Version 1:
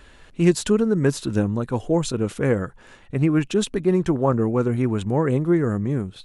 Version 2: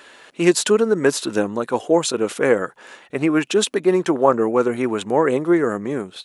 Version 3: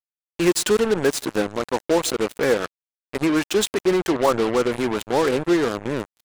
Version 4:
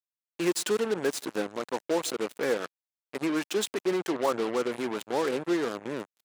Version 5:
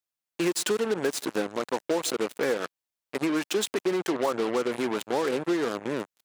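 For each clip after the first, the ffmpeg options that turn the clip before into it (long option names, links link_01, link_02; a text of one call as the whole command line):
ffmpeg -i in.wav -af "highpass=390,volume=7.5dB" out.wav
ffmpeg -i in.wav -af "aecho=1:1:159:0.0708,acontrast=51,acrusher=bits=2:mix=0:aa=0.5,volume=-7.5dB" out.wav
ffmpeg -i in.wav -af "highpass=180,volume=-8dB" out.wav
ffmpeg -i in.wav -af "acompressor=threshold=-27dB:ratio=4,volume=4.5dB" out.wav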